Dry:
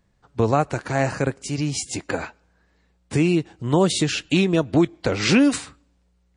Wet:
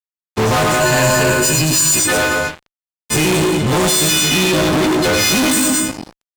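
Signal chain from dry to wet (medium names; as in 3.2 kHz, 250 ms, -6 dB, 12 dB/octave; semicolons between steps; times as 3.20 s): partials quantised in pitch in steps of 3 st; loudspeakers at several distances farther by 34 m -7 dB, 75 m -10 dB; on a send at -9.5 dB: reverberation RT60 1.1 s, pre-delay 5 ms; on the sum: fuzz box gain 33 dB, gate -40 dBFS; 0.80–1.99 s: rippled EQ curve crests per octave 1.4, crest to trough 8 dB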